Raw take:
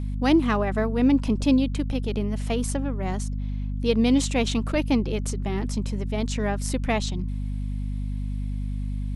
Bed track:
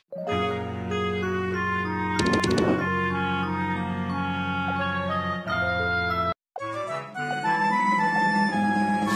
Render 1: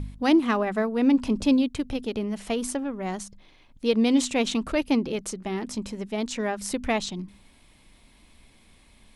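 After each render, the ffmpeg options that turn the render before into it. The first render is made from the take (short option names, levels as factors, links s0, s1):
-af "bandreject=f=50:t=h:w=4,bandreject=f=100:t=h:w=4,bandreject=f=150:t=h:w=4,bandreject=f=200:t=h:w=4,bandreject=f=250:t=h:w=4"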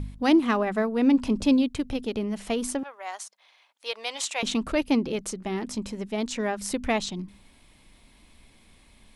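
-filter_complex "[0:a]asettb=1/sr,asplit=3[s0][s1][s2];[s0]atrim=end=2.834[s3];[s1]atrim=start=2.83:end=4.43,asetpts=PTS-STARTPTS,afade=t=in:d=0.004:c=qsin,afade=t=out:st=1.596:d=0.004:c=qsin,highpass=f=670:w=0.5412,highpass=f=670:w=1.3066[s4];[s2]atrim=start=4.426[s5];[s3][s4]acrossfade=d=0.004:c1=hsin:c2=qsin[s6];[s6][s5]acrossfade=d=0.004:c1=qsin:c2=hsin"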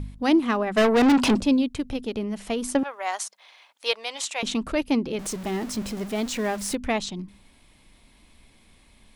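-filter_complex "[0:a]asplit=3[s0][s1][s2];[s0]afade=t=out:st=0.76:d=0.02[s3];[s1]asplit=2[s4][s5];[s5]highpass=f=720:p=1,volume=22.4,asoftclip=type=tanh:threshold=0.282[s6];[s4][s6]amix=inputs=2:normalize=0,lowpass=f=7600:p=1,volume=0.501,afade=t=in:st=0.76:d=0.02,afade=t=out:st=1.39:d=0.02[s7];[s2]afade=t=in:st=1.39:d=0.02[s8];[s3][s7][s8]amix=inputs=3:normalize=0,asettb=1/sr,asplit=3[s9][s10][s11];[s9]atrim=end=5.194[s12];[s10]atrim=start=5.19:end=6.75,asetpts=PTS-STARTPTS,afade=t=in:d=0.004:c=qsin,afade=t=out:st=1.556:d=0.004:c=qsin,aeval=exprs='val(0)+0.5*0.0211*sgn(val(0))':c=same[s13];[s11]atrim=start=6.746[s14];[s12][s13]acrossfade=d=0.004:c1=hsin:c2=qsin[s15];[s15][s14]acrossfade=d=0.004:c1=qsin:c2=hsin,asplit=3[s16][s17][s18];[s16]atrim=end=2.752[s19];[s17]atrim=start=2.748:end=3.952,asetpts=PTS-STARTPTS,volume=2.37[s20];[s18]atrim=start=3.948[s21];[s19][s20]acrossfade=d=0.004:c1=hsin:c2=hsin[s22];[s22][s21]acrossfade=d=0.004:c1=hsin:c2=hsin"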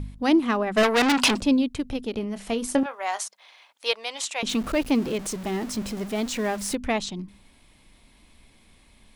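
-filter_complex "[0:a]asettb=1/sr,asplit=3[s0][s1][s2];[s0]atrim=end=0.834[s3];[s1]atrim=start=0.83:end=1.42,asetpts=PTS-STARTPTS,afade=t=in:d=0.004:c=qsin,afade=t=out:st=0.586:d=0.004:c=qsin,tiltshelf=f=760:g=-7[s4];[s2]atrim=start=1.416[s5];[s3][s4]acrossfade=d=0.004:c1=hsin:c2=qsin[s6];[s6][s5]acrossfade=d=0.004:c1=qsin:c2=hsin,asettb=1/sr,asplit=3[s7][s8][s9];[s7]atrim=end=2.114[s10];[s8]atrim=start=2.11:end=3.25,asetpts=PTS-STARTPTS,afade=t=in:d=0.004:c=qsin,afade=t=out:st=1.136:d=0.004:c=qsin,asplit=2[s11][s12];[s12]adelay=26,volume=0.251[s13];[s11][s13]amix=inputs=2:normalize=0,atrim=end_sample=50274[s14];[s9]atrim=start=3.246[s15];[s10][s14]acrossfade=d=0.004:c1=hsin:c2=qsin[s16];[s16][s15]acrossfade=d=0.004:c1=qsin:c2=hsin,asettb=1/sr,asplit=3[s17][s18][s19];[s17]atrim=end=4.494[s20];[s18]atrim=start=4.49:end=5.18,asetpts=PTS-STARTPTS,afade=t=in:d=0.004:c=qsin,afade=t=out:st=0.686:d=0.004:c=qsin,aeval=exprs='val(0)+0.5*0.0211*sgn(val(0))':c=same[s21];[s19]atrim=start=5.176[s22];[s20][s21]acrossfade=d=0.004:c1=hsin:c2=qsin[s23];[s23][s22]acrossfade=d=0.004:c1=qsin:c2=hsin"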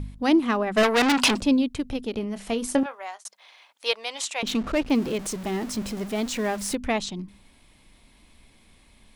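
-filter_complex "[0:a]asettb=1/sr,asplit=3[s0][s1][s2];[s0]atrim=end=4.424[s3];[s1]atrim=start=4.42:end=4.9,asetpts=PTS-STARTPTS,afade=t=in:d=0.004:c=qsin,afade=t=out:st=0.476:d=0.004:c=qsin,adynamicsmooth=sensitivity=5.5:basefreq=3200[s4];[s2]atrim=start=4.896[s5];[s3][s4]acrossfade=d=0.004:c1=hsin:c2=qsin[s6];[s6][s5]acrossfade=d=0.004:c1=qsin:c2=hsin,asplit=2[s7][s8];[s7]atrim=end=3.25,asetpts=PTS-STARTPTS,afade=t=out:st=2.82:d=0.43[s9];[s8]atrim=start=3.25,asetpts=PTS-STARTPTS,afade=t=in:d=0.004:c=hsin[s10];[s9][s10]concat=n=2:v=0:a=1"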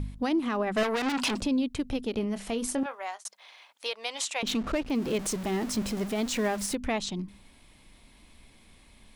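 -af "alimiter=limit=0.106:level=0:latency=1:release=161"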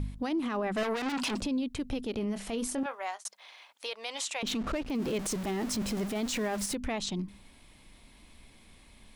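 -af "alimiter=level_in=1.06:limit=0.0631:level=0:latency=1:release=25,volume=0.944"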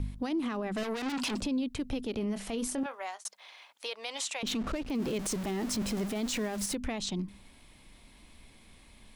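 -filter_complex "[0:a]acrossover=split=380|3000[s0][s1][s2];[s1]acompressor=threshold=0.0158:ratio=6[s3];[s0][s3][s2]amix=inputs=3:normalize=0"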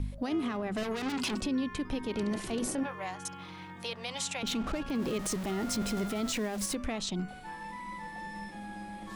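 -filter_complex "[1:a]volume=0.106[s0];[0:a][s0]amix=inputs=2:normalize=0"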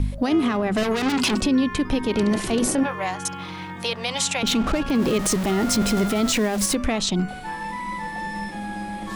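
-af "volume=3.76"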